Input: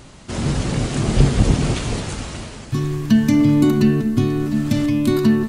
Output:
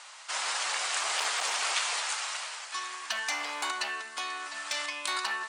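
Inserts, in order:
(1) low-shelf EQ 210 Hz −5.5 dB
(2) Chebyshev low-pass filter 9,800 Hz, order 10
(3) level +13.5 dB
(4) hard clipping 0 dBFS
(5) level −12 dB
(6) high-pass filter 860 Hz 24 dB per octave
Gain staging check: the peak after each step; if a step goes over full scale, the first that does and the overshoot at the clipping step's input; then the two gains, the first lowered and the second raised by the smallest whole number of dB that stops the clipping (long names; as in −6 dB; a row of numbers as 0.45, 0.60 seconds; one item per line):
−5.0, −6.0, +7.5, 0.0, −12.0, −14.0 dBFS
step 3, 7.5 dB
step 3 +5.5 dB, step 5 −4 dB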